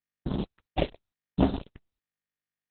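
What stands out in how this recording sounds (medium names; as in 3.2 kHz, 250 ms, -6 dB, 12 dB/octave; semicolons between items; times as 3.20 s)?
a quantiser's noise floor 6-bit, dither none; phasing stages 4, 0.85 Hz, lowest notch 200–2300 Hz; chopped level 2.6 Hz, depth 60%, duty 25%; Opus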